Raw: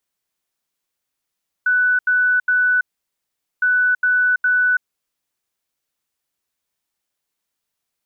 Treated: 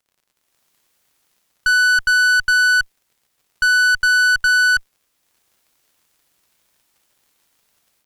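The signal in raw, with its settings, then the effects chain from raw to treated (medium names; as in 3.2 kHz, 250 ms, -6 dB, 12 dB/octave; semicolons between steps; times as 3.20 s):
beep pattern sine 1.49 kHz, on 0.33 s, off 0.08 s, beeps 3, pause 0.81 s, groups 2, -13 dBFS
level rider gain up to 16 dB; valve stage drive 13 dB, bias 0.4; crackle 79 per s -49 dBFS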